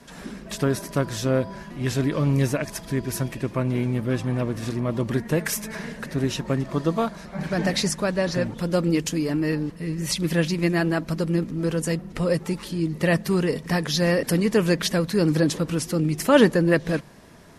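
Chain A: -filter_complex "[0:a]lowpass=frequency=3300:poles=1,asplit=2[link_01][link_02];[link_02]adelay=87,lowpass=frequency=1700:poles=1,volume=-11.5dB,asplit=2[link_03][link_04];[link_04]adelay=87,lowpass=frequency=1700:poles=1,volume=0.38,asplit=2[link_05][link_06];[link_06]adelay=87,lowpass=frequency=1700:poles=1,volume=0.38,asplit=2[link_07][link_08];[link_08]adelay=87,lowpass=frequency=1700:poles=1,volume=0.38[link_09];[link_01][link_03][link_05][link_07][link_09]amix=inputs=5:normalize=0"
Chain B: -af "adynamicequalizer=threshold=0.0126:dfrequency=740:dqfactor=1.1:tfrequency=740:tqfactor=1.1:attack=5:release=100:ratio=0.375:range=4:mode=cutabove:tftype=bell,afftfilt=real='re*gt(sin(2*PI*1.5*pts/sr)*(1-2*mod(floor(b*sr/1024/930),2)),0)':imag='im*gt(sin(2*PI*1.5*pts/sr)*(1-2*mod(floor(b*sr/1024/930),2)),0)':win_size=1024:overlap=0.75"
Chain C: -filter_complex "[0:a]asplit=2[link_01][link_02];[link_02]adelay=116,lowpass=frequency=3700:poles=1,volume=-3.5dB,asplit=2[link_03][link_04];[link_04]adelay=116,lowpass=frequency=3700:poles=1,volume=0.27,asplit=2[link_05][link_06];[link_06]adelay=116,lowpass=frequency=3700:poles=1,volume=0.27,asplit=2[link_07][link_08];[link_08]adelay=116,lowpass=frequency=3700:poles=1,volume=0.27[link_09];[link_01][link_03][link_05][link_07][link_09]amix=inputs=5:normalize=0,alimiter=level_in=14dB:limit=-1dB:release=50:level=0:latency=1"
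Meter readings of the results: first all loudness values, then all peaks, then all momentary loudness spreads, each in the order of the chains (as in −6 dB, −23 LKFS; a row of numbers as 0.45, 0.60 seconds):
−24.0, −28.0, −11.0 LKFS; −4.0, −10.0, −1.0 dBFS; 8, 10, 4 LU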